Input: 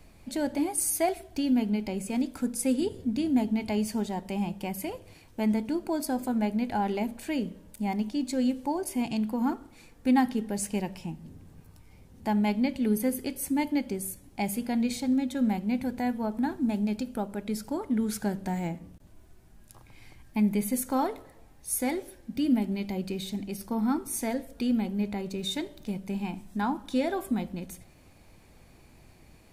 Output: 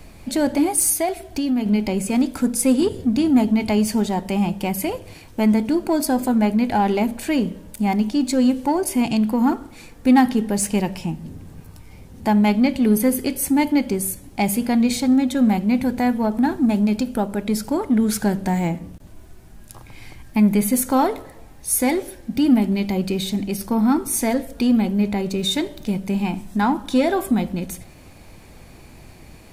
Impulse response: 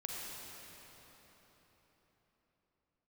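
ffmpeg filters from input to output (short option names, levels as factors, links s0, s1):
-filter_complex "[0:a]asplit=2[s0][s1];[s1]asoftclip=type=tanh:threshold=0.0335,volume=0.562[s2];[s0][s2]amix=inputs=2:normalize=0,asettb=1/sr,asplit=3[s3][s4][s5];[s3]atrim=end=0.934[s6];[s4]atrim=start=0.93:end=1.66,asetpts=PTS-STARTPTS,afade=t=in:d=0.004:c=qsin,afade=t=out:st=0.726:d=0.004:c=qsin,acompressor=threshold=0.0178:ratio=1.5[s7];[s5]atrim=start=1.656[s8];[s6][s7]acrossfade=d=0.004:c1=hsin:c2=qsin[s9];[s9][s8]acrossfade=d=0.004:c1=qsin:c2=hsin,volume=2.37"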